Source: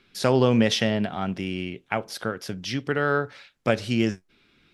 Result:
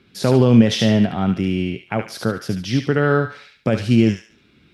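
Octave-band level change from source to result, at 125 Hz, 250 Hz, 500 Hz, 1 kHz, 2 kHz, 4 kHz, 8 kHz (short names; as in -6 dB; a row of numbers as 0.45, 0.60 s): +10.0, +9.0, +4.5, +2.5, +2.0, +3.0, +3.0 dB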